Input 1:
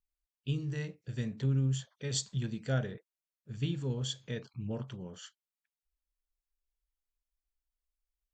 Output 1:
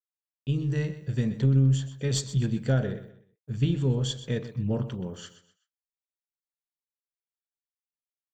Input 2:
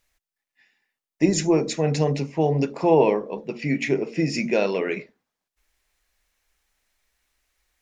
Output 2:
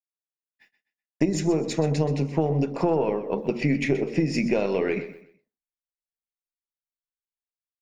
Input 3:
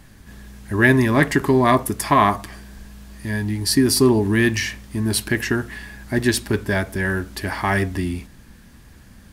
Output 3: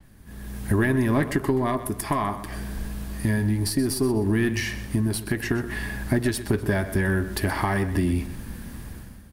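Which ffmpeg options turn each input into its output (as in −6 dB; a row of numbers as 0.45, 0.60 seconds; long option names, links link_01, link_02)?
-af "aexciter=amount=2.9:drive=2.6:freq=9100,acompressor=threshold=-28dB:ratio=6,aeval=exprs='0.224*(cos(1*acos(clip(val(0)/0.224,-1,1)))-cos(1*PI/2))+0.0501*(cos(2*acos(clip(val(0)/0.224,-1,1)))-cos(2*PI/2))':channel_layout=same,agate=range=-48dB:threshold=-59dB:ratio=16:detection=peak,dynaudnorm=framelen=130:gausssize=7:maxgain=15dB,tiltshelf=frequency=1100:gain=3,aecho=1:1:126|252|378:0.211|0.0655|0.0203,adynamicequalizer=threshold=0.01:dfrequency=7300:dqfactor=0.7:tfrequency=7300:tqfactor=0.7:attack=5:release=100:ratio=0.375:range=1.5:mode=cutabove:tftype=highshelf,volume=-8dB"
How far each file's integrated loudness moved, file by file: +8.5, −2.0, −5.5 LU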